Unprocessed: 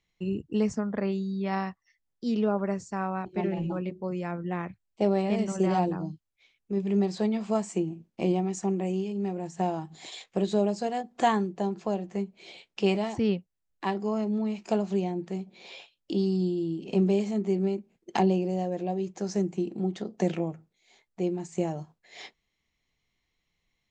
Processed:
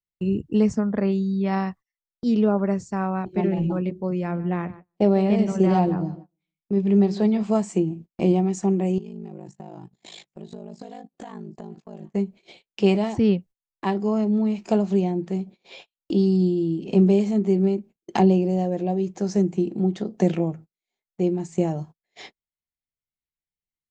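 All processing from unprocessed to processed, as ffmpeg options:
-filter_complex "[0:a]asettb=1/sr,asplit=3[a][b][c];[a]atrim=end=4.114[d];[b]atrim=start=4.11:end=7.43,asetpts=PTS-STARTPTS,afade=t=in:d=0.004:c=qsin,afade=t=out:st=3.316:d=0.004:c=qsin,lowpass=6.1k,asplit=2[e][f];[f]adelay=150,lowpass=f=2.6k:p=1,volume=-16dB,asplit=2[g][h];[h]adelay=150,lowpass=f=2.6k:p=1,volume=0.36,asplit=2[i][j];[j]adelay=150,lowpass=f=2.6k:p=1,volume=0.36[k];[e][g][i][k]amix=inputs=4:normalize=0,atrim=end_sample=146412[l];[c]atrim=start=7.426[m];[d][l]acrossfade=d=0.004:c1=hsin:c2=qsin[n];[n][m]acrossfade=d=0.004:c1=qsin:c2=hsin,asettb=1/sr,asplit=3[o][p][q];[o]atrim=end=8.984[r];[p]atrim=start=8.98:end=12.14,asetpts=PTS-STARTPTS,afade=t=in:d=0.004:c=qsin,afade=t=out:st=3.156:d=0.004:c=qsin,acompressor=threshold=-37dB:ratio=12:attack=3.2:release=140:knee=1:detection=peak,aeval=exprs='val(0)*sin(2*PI*26*n/s)':c=same,aecho=1:1:777:0.0891,atrim=end_sample=139356[s];[q]atrim=start=12.136[t];[r][s]acrossfade=d=0.004:c1=hsin:c2=qsin[u];[u][t]acrossfade=d=0.004:c1=qsin:c2=hsin,agate=range=-28dB:threshold=-46dB:ratio=16:detection=peak,lowshelf=f=450:g=6.5,volume=2dB"

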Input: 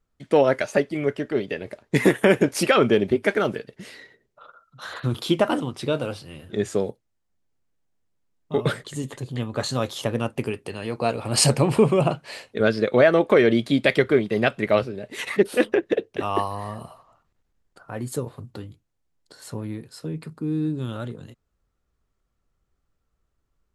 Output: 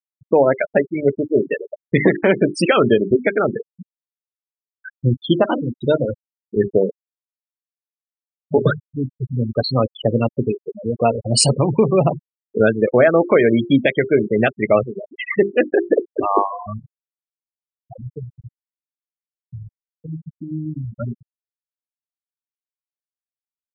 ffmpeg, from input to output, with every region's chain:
-filter_complex "[0:a]asettb=1/sr,asplit=3[a][b][c];[a]atrim=end=17.934[d];[b]atrim=start=17.93:end=21,asetpts=PTS-STARTPTS,afade=t=in:d=0.004:c=qsin,afade=t=out:st=3.066:d=0.004:c=qsin,acrossover=split=120|3000[e][f][g];[f]acompressor=threshold=-33dB:ratio=4:attack=3.2:release=140:knee=2.83:detection=peak[h];[e][h][g]amix=inputs=3:normalize=0,aeval=exprs='clip(val(0),-1,0.0188)':c=same[i];[c]atrim=start=20.996[j];[d][i]acrossfade=d=0.004:c1=hsin:c2=qsin[k];[k][j]acrossfade=d=0.004:c1=qsin:c2=hsin,bandreject=f=50:t=h:w=6,bandreject=f=100:t=h:w=6,bandreject=f=150:t=h:w=6,bandreject=f=200:t=h:w=6,bandreject=f=250:t=h:w=6,bandreject=f=300:t=h:w=6,bandreject=f=350:t=h:w=6,bandreject=f=400:t=h:w=6,afftfilt=real='re*gte(hypot(re,im),0.112)':imag='im*gte(hypot(re,im),0.112)':win_size=1024:overlap=0.75,alimiter=limit=-12dB:level=0:latency=1:release=395,volume=8.5dB"

